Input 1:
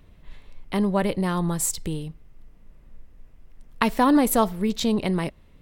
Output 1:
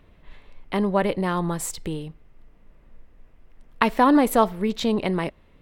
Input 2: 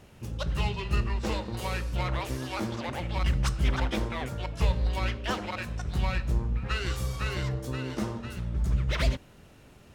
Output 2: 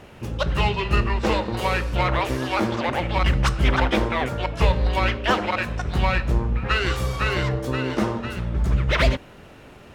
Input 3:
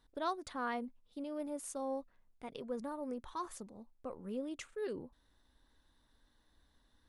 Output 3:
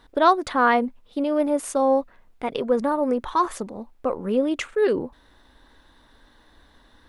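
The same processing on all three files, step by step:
tone controls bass -6 dB, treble -9 dB; match loudness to -23 LUFS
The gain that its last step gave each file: +3.0, +11.5, +20.0 dB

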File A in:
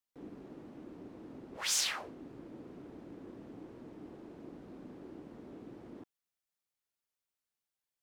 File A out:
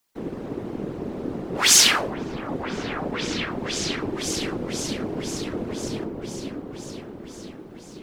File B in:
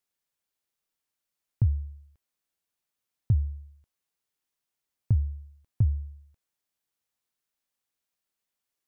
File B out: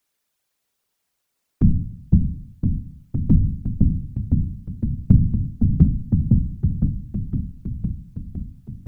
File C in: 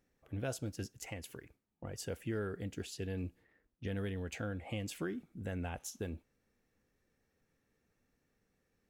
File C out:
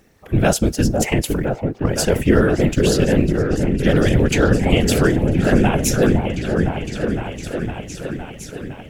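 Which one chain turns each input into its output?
repeats that get brighter 0.51 s, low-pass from 750 Hz, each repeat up 1 oct, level -3 dB; whisperiser; normalise peaks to -1.5 dBFS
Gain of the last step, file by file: +17.0, +10.0, +23.0 dB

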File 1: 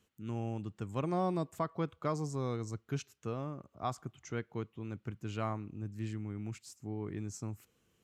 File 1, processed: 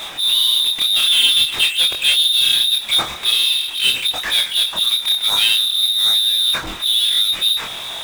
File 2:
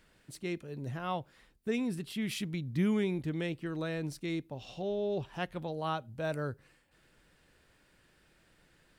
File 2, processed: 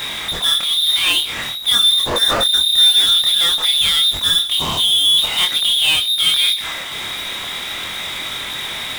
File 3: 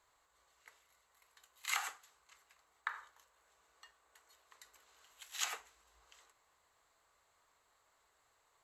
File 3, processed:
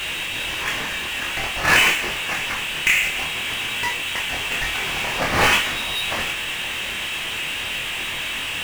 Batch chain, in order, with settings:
inverted band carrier 3800 Hz; power-law curve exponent 0.35; chorus 0.49 Hz, depth 4.6 ms; normalise peaks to -6 dBFS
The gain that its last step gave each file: +14.5, +14.0, +16.5 dB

